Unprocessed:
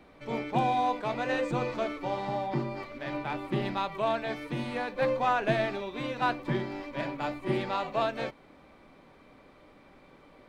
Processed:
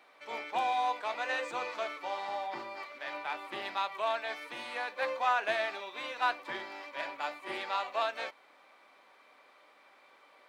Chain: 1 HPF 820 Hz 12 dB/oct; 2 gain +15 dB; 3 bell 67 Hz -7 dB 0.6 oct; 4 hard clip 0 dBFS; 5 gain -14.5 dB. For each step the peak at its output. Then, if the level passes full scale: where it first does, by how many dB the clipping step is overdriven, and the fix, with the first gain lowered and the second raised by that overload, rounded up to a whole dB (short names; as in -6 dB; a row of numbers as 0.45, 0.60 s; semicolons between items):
-17.0, -2.0, -2.0, -2.0, -16.5 dBFS; no overload